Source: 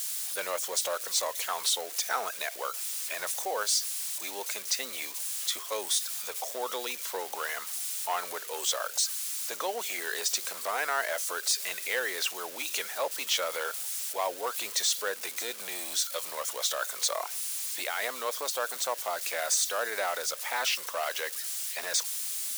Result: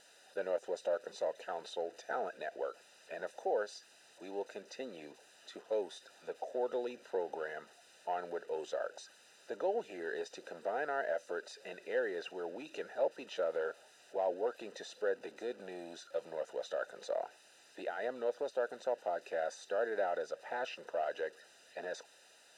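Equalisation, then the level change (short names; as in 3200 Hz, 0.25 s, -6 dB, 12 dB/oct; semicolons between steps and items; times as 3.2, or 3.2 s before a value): running mean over 40 samples; air absorption 61 m; low shelf 120 Hz -5.5 dB; +5.0 dB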